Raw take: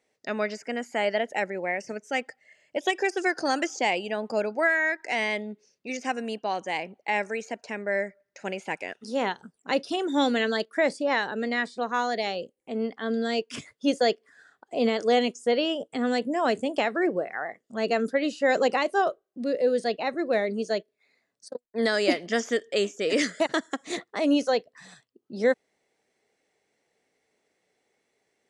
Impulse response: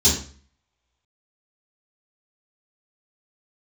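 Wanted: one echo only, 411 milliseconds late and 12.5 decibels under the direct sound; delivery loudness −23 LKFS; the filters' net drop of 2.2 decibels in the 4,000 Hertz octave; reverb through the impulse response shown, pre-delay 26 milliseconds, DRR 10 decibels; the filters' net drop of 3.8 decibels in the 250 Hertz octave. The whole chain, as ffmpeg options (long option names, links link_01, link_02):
-filter_complex "[0:a]equalizer=frequency=250:width_type=o:gain=-4.5,equalizer=frequency=4000:width_type=o:gain=-3,aecho=1:1:411:0.237,asplit=2[link_01][link_02];[1:a]atrim=start_sample=2205,adelay=26[link_03];[link_02][link_03]afir=irnorm=-1:irlink=0,volume=-25.5dB[link_04];[link_01][link_04]amix=inputs=2:normalize=0,volume=4.5dB"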